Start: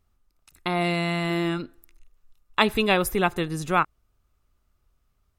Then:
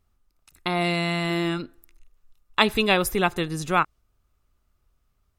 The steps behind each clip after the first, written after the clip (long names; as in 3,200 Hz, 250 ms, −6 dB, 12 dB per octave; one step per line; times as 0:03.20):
dynamic equaliser 5,100 Hz, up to +4 dB, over −42 dBFS, Q 0.71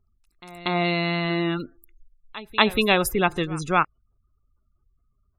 gate on every frequency bin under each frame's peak −25 dB strong
echo ahead of the sound 237 ms −19 dB
level +1 dB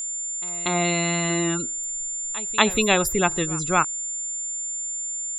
steady tone 7,200 Hz −27 dBFS